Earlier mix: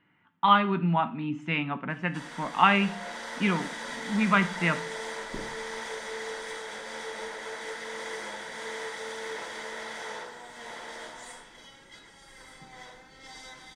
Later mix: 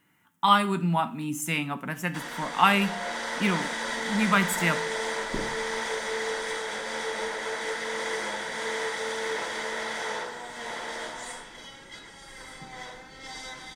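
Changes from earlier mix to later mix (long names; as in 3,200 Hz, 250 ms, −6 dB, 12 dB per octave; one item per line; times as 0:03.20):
speech: remove low-pass filter 3,200 Hz 24 dB per octave
background +6.0 dB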